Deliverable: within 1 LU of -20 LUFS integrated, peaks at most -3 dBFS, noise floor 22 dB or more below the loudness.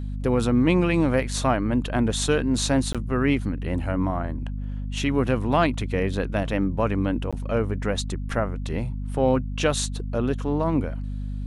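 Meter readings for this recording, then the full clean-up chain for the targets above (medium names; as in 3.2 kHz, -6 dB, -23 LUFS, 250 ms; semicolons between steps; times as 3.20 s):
dropouts 2; longest dropout 16 ms; hum 50 Hz; highest harmonic 250 Hz; hum level -27 dBFS; loudness -24.5 LUFS; peak level -6.5 dBFS; loudness target -20.0 LUFS
-> interpolate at 2.93/7.31 s, 16 ms; de-hum 50 Hz, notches 5; trim +4.5 dB; peak limiter -3 dBFS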